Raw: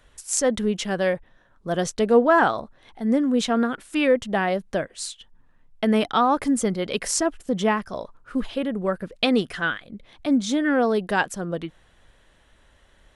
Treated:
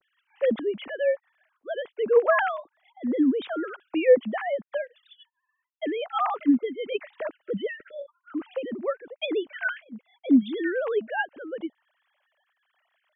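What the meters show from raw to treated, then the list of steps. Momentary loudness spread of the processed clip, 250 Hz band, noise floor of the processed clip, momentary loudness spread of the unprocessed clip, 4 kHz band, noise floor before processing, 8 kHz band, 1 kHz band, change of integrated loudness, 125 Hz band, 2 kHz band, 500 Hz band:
15 LU, -4.0 dB, -80 dBFS, 12 LU, -10.0 dB, -58 dBFS, under -40 dB, -7.0 dB, -3.5 dB, under -10 dB, -4.0 dB, -2.0 dB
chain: formants replaced by sine waves; spectral selection erased 7.42–8.09 s, 620–1300 Hz; trim -3.5 dB

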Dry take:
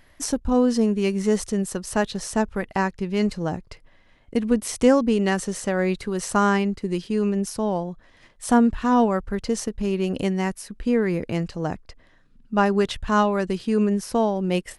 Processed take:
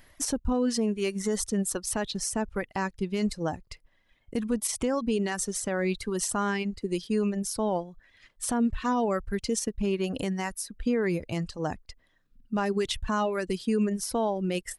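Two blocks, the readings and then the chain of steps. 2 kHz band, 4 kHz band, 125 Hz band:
-6.0 dB, -2.0 dB, -6.5 dB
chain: reverb removal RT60 1.5 s; treble shelf 5.8 kHz +7.5 dB; peak limiter -16.5 dBFS, peak gain reduction 11.5 dB; trim -1.5 dB

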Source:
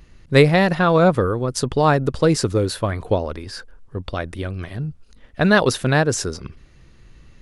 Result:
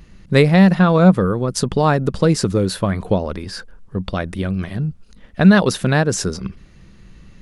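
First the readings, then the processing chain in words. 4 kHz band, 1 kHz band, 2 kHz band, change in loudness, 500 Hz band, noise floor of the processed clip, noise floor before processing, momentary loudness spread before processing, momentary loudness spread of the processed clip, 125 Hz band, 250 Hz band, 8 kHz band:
+0.5 dB, -0.5 dB, -0.5 dB, +2.5 dB, 0.0 dB, -46 dBFS, -50 dBFS, 16 LU, 17 LU, +4.0 dB, +6.0 dB, +1.5 dB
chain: peaking EQ 190 Hz +12 dB 0.3 oct; in parallel at -0.5 dB: compression, threshold -19 dBFS, peak gain reduction 14.5 dB; on the sum: trim -3 dB

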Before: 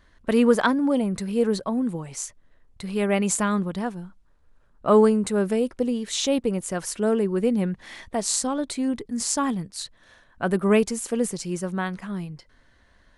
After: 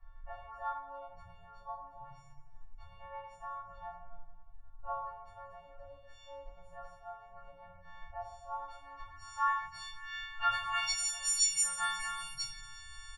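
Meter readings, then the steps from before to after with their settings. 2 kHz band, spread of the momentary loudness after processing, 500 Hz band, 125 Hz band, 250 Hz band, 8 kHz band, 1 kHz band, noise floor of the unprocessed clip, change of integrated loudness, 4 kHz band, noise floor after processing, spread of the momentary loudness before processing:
-7.5 dB, 22 LU, -28.5 dB, -27.0 dB, under -40 dB, -6.0 dB, -6.5 dB, -59 dBFS, -11.0 dB, -5.5 dB, -56 dBFS, 13 LU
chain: partials quantised in pitch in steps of 4 st; dynamic bell 4.8 kHz, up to -5 dB, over -31 dBFS, Q 0.75; compression 2:1, threshold -38 dBFS, peak gain reduction 14.5 dB; low-pass sweep 590 Hz -> 9.1 kHz, 8.27–11.75 s; inverse Chebyshev band-stop 180–470 Hz, stop band 50 dB; feedback delay 178 ms, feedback 57%, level -16 dB; simulated room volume 140 m³, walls mixed, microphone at 3.5 m; trim -7 dB

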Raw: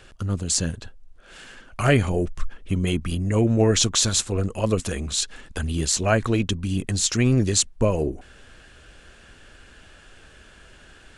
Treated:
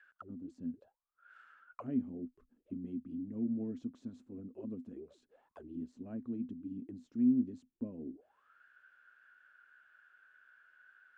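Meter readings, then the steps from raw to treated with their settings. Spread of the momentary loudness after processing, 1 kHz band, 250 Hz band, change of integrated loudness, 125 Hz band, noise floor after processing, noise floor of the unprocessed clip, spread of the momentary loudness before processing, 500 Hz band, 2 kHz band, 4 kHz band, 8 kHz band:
17 LU, under -25 dB, -10.5 dB, -17.0 dB, -28.5 dB, -85 dBFS, -50 dBFS, 11 LU, -25.5 dB, under -25 dB, under -40 dB, under -40 dB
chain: auto-wah 250–1700 Hz, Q 15, down, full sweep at -21.5 dBFS; trim -2 dB

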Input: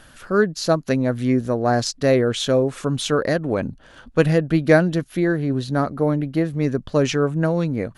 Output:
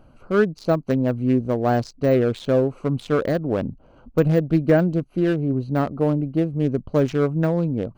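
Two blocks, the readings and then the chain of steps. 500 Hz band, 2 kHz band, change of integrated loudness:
-1.0 dB, -6.0 dB, -1.0 dB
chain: local Wiener filter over 25 samples; de-esser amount 90%

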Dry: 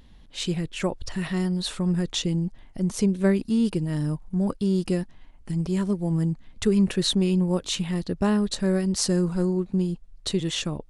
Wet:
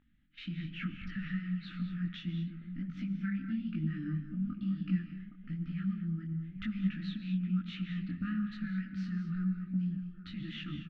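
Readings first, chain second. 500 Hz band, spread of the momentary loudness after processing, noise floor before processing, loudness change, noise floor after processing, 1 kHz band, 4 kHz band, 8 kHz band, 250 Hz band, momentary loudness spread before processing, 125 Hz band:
under -30 dB, 7 LU, -50 dBFS, -11.5 dB, -51 dBFS, -17.5 dB, -19.0 dB, under -40 dB, -10.5 dB, 7 LU, -9.5 dB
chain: brick-wall FIR band-stop 320–1200 Hz; bass shelf 64 Hz -9.5 dB; hum notches 50/100/150/200 Hz; compression 2:1, threshold -37 dBFS, peak gain reduction 9.5 dB; low-pass 2.6 kHz 24 dB/octave; echo from a far wall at 140 m, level -13 dB; gate -47 dBFS, range -13 dB; peaking EQ 820 Hz +4 dB 0.26 oct; gated-style reverb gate 250 ms rising, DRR 8 dB; detune thickener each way 36 cents; trim +2 dB

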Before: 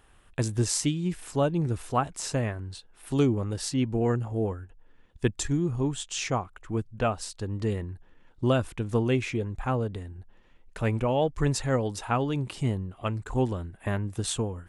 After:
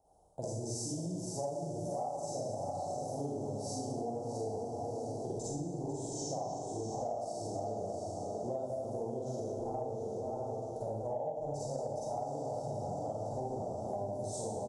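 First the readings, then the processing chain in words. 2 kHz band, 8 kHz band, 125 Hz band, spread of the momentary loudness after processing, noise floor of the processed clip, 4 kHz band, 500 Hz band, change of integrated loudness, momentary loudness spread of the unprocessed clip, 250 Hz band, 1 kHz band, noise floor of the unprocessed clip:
under -35 dB, -9.0 dB, -14.0 dB, 2 LU, -41 dBFS, -14.5 dB, -5.5 dB, -9.5 dB, 8 LU, -12.5 dB, -5.0 dB, -58 dBFS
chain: backward echo that repeats 333 ms, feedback 49%, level -9 dB; high-pass 49 Hz; comb 1.3 ms, depth 45%; echo that smears into a reverb 712 ms, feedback 64%, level -10 dB; in parallel at -2 dB: peak limiter -22 dBFS, peak gain reduction 10.5 dB; on the sum: Chebyshev band-stop 730–5900 Hz, order 3; three-band isolator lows -15 dB, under 380 Hz, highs -14 dB, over 4.5 kHz; Schroeder reverb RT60 1 s, DRR -7.5 dB; compression 10:1, threshold -26 dBFS, peak gain reduction 15.5 dB; trim -8 dB

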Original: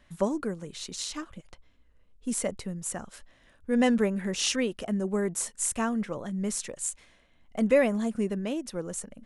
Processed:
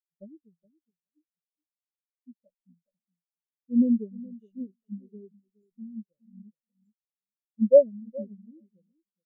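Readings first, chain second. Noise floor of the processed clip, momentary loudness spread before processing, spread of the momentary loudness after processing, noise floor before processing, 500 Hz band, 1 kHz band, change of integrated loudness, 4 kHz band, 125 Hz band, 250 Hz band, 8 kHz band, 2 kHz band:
under -85 dBFS, 14 LU, 23 LU, -62 dBFS, +2.5 dB, under -30 dB, +6.5 dB, under -40 dB, no reading, -1.5 dB, under -40 dB, under -40 dB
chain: comb filter that takes the minimum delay 0.3 ms; high-order bell 1.2 kHz -14.5 dB 1.2 oct; feedback delay 419 ms, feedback 29%, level -5.5 dB; spectral contrast expander 4:1; trim +5 dB

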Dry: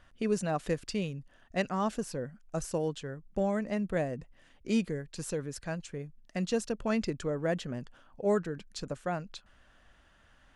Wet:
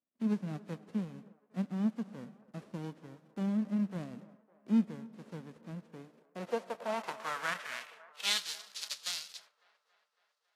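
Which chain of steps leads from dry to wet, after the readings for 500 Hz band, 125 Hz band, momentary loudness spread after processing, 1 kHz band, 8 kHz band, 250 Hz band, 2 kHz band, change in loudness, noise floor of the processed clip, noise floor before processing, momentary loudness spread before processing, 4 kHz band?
-11.0 dB, -5.0 dB, 18 LU, -4.5 dB, -0.5 dB, -1.5 dB, -0.5 dB, -2.5 dB, -80 dBFS, -63 dBFS, 11 LU, +6.0 dB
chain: formants flattened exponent 0.1; algorithmic reverb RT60 2.3 s, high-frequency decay 0.5×, pre-delay 50 ms, DRR 19 dB; gate -51 dBFS, range -24 dB; high-pass 120 Hz 12 dB/octave; band-pass sweep 230 Hz -> 4.4 kHz, 5.85–8.51 s; feedback echo behind a band-pass 277 ms, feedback 65%, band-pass 840 Hz, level -18 dB; trim +5 dB; AAC 48 kbps 32 kHz

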